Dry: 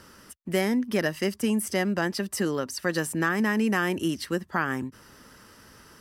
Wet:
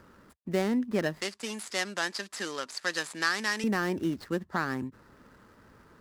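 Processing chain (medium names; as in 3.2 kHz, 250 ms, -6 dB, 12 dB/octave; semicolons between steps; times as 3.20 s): median filter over 15 samples; 1.21–3.64 s: frequency weighting ITU-R 468; trim -2.5 dB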